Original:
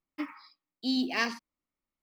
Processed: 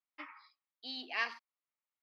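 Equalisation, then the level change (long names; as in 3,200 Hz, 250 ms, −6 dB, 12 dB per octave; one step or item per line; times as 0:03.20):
high-pass filter 750 Hz 12 dB per octave
high-frequency loss of the air 350 metres
high-shelf EQ 2,900 Hz +10.5 dB
−4.0 dB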